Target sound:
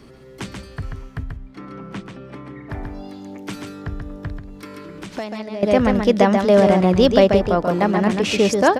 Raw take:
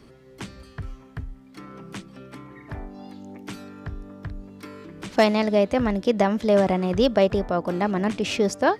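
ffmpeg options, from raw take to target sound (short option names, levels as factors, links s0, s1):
-filter_complex "[0:a]asettb=1/sr,asplit=3[s0][s1][s2];[s0]atrim=end=1.234[s3];[s1]atrim=start=1.23:end=2.7,asetpts=PTS-STARTPTS,afade=t=in:d=0.004:c=qsin,afade=t=out:st=1.466:d=0.004:c=qsin,aemphasis=mode=reproduction:type=75kf[s4];[s2]atrim=start=2.696[s5];[s3][s4]acrossfade=d=0.004:c1=hsin:c2=qsin[s6];[s6][s5]acrossfade=d=0.004:c1=qsin:c2=hsin,aecho=1:1:136:0.562,asettb=1/sr,asplit=3[s7][s8][s9];[s7]atrim=end=4.374[s10];[s8]atrim=start=4.37:end=5.63,asetpts=PTS-STARTPTS,afade=t=in:d=0.004:c=qsin,afade=t=out:st=1.256:d=0.004:c=qsin,acompressor=threshold=0.0141:ratio=3[s11];[s9]atrim=start=5.626[s12];[s10][s11]acrossfade=d=0.004:c1=hsin:c2=qsin[s13];[s13][s12]acrossfade=d=0.004:c1=qsin:c2=hsin,volume=1.78"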